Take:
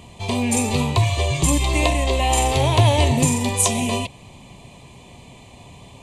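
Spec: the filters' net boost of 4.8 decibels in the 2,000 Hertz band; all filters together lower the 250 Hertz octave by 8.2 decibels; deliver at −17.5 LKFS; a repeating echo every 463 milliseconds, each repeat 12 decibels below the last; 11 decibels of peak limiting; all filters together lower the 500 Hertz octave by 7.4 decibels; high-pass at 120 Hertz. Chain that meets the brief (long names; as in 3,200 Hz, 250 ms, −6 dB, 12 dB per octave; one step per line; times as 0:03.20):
high-pass filter 120 Hz
parametric band 250 Hz −7.5 dB
parametric band 500 Hz −8.5 dB
parametric band 2,000 Hz +6.5 dB
brickwall limiter −14 dBFS
repeating echo 463 ms, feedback 25%, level −12 dB
level +6 dB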